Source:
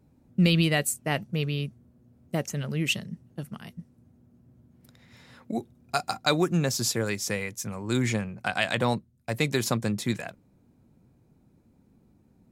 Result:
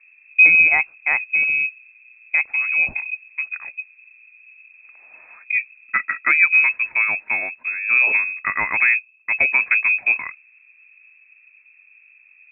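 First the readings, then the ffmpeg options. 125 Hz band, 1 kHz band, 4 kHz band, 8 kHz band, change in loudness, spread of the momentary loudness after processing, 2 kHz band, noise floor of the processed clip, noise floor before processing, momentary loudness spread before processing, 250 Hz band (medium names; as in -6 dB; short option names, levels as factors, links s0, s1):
under -20 dB, +3.0 dB, under -40 dB, under -40 dB, +11.0 dB, 15 LU, +18.0 dB, -53 dBFS, -63 dBFS, 15 LU, under -15 dB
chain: -af "lowpass=f=2300:t=q:w=0.5098,lowpass=f=2300:t=q:w=0.6013,lowpass=f=2300:t=q:w=0.9,lowpass=f=2300:t=q:w=2.563,afreqshift=-2700,crystalizer=i=7.5:c=0"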